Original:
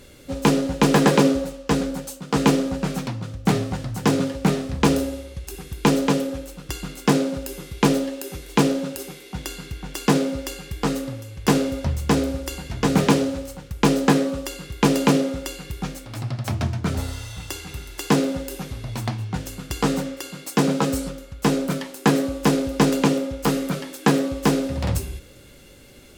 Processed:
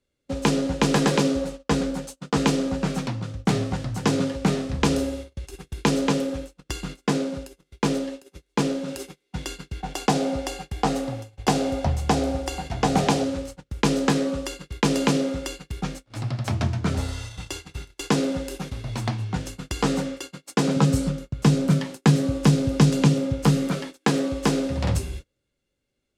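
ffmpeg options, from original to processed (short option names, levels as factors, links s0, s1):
-filter_complex "[0:a]asettb=1/sr,asplit=3[s0][s1][s2];[s0]atrim=end=9.804[s3];[s1]atrim=start=9.8:end=13.24,asetpts=PTS-STARTPTS,afade=t=in:d=0.004:c=qsin,afade=t=out:st=3.436:d=0.004:c=qsin,equalizer=f=750:w=3.4:g=13.5[s4];[s2]atrim=start=13.236[s5];[s3][s4]acrossfade=d=0.004:c1=hsin:c2=qsin[s6];[s6][s5]acrossfade=d=0.004:c1=qsin:c2=hsin,asettb=1/sr,asplit=3[s7][s8][s9];[s7]atrim=end=20.764[s10];[s8]atrim=start=20.76:end=23.68,asetpts=PTS-STARTPTS,afade=t=in:d=0.004:c=qsin,afade=t=out:st=2.916:d=0.004:c=qsin,equalizer=f=130:w=1.2:g=14[s11];[s9]atrim=start=23.676[s12];[s10][s11]acrossfade=d=0.004:c1=hsin:c2=qsin[s13];[s13][s12]acrossfade=d=0.004:c1=qsin:c2=hsin,asplit=3[s14][s15][s16];[s14]atrim=end=7.072[s17];[s15]atrim=start=7.068:end=8.882,asetpts=PTS-STARTPTS,volume=0.668[s18];[s16]atrim=start=8.878[s19];[s17][s18]acrossfade=d=0.004:c1=hsin:c2=hsin[s20];[s20][s19]acrossfade=d=0.004:c1=hsin:c2=hsin,lowpass=9100,agate=range=0.0282:threshold=0.02:ratio=16:detection=peak,acrossover=split=130|3000[s21][s22][s23];[s22]acompressor=threshold=0.126:ratio=6[s24];[s21][s24][s23]amix=inputs=3:normalize=0"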